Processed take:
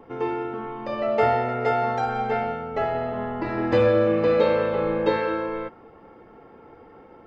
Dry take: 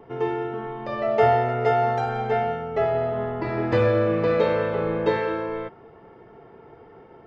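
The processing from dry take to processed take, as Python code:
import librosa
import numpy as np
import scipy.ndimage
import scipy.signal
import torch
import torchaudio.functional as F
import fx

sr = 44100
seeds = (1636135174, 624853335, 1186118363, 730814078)

y = x + 0.45 * np.pad(x, (int(3.7 * sr / 1000.0), 0))[:len(x)]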